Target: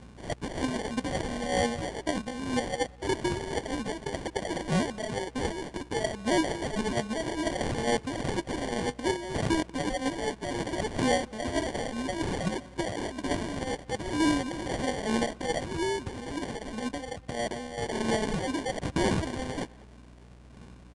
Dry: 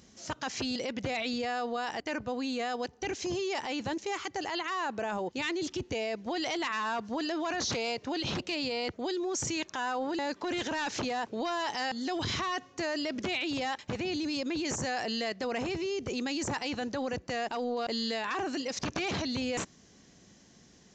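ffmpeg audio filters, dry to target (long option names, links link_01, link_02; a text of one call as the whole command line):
ffmpeg -i in.wav -filter_complex "[0:a]highshelf=frequency=3800:gain=3.5,asettb=1/sr,asplit=3[link_01][link_02][link_03];[link_01]atrim=end=15.644[link_04];[link_02]atrim=start=15.64:end=17.78,asetpts=PTS-STARTPTS,afade=type=in:duration=0.004:curve=qsin,afade=type=out:start_time=2.136:duration=0.004:curve=qsin,acompressor=threshold=-35dB:ratio=3[link_05];[link_03]atrim=start=17.776[link_06];[link_04][link_05]acrossfade=duration=0.004:curve1=hsin:curve2=qsin[link_07];[link_07][link_06]acrossfade=duration=0.004:curve1=qsin:curve2=hsin,aphaser=in_gain=1:out_gain=1:delay=4.7:decay=0.7:speed=0.63:type=sinusoidal,acrusher=bits=2:mode=log:mix=0:aa=0.000001,aeval=exprs='val(0)+0.00355*(sin(2*PI*60*n/s)+sin(2*PI*2*60*n/s)/2+sin(2*PI*3*60*n/s)/3+sin(2*PI*4*60*n/s)/4+sin(2*PI*5*60*n/s)/5)':channel_layout=same,acrusher=samples=34:mix=1:aa=0.000001,asplit=2[link_08][link_09];[link_09]adelay=200,highpass=300,lowpass=3400,asoftclip=type=hard:threshold=-26dB,volume=-20dB[link_10];[link_08][link_10]amix=inputs=2:normalize=0,aresample=22050,aresample=44100,volume=-1.5dB" out.wav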